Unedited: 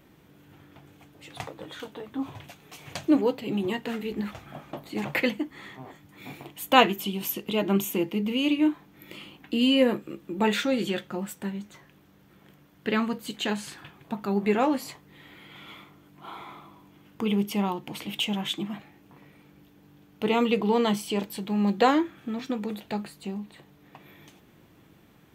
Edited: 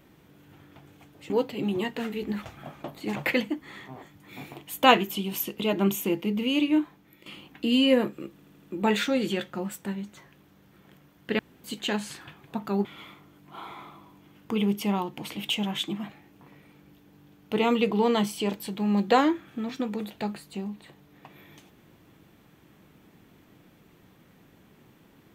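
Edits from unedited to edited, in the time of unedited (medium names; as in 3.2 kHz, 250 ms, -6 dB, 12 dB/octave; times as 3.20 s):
1.30–3.19 s: delete
8.51–9.15 s: fade out equal-power, to -13.5 dB
10.21 s: stutter 0.08 s, 5 plays
12.96–13.21 s: room tone
14.42–15.55 s: delete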